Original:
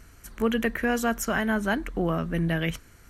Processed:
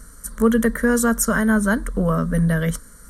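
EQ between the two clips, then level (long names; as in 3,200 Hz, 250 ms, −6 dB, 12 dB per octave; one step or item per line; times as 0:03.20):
low-shelf EQ 220 Hz +4 dB
parametric band 9,200 Hz +12.5 dB 0.41 octaves
phaser with its sweep stopped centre 510 Hz, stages 8
+7.5 dB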